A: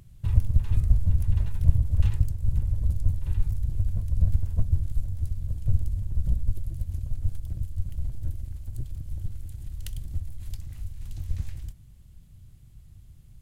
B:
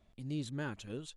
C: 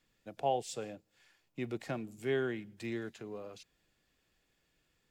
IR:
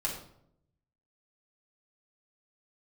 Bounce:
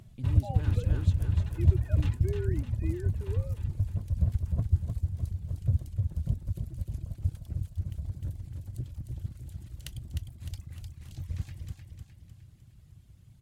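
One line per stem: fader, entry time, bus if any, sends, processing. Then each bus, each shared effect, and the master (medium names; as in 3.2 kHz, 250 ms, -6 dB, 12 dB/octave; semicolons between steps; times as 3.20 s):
+1.5 dB, 0.00 s, no bus, no send, echo send -5.5 dB, high-pass 80 Hz 12 dB/octave; reverb removal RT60 1.5 s
-1.5 dB, 0.00 s, bus A, no send, echo send -7 dB, none
-2.0 dB, 0.00 s, bus A, no send, no echo send, formants replaced by sine waves
bus A: 0.0 dB, bass shelf 340 Hz +10.5 dB; peak limiter -32 dBFS, peak gain reduction 13 dB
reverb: none
echo: feedback delay 305 ms, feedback 49%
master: treble shelf 9 kHz -8 dB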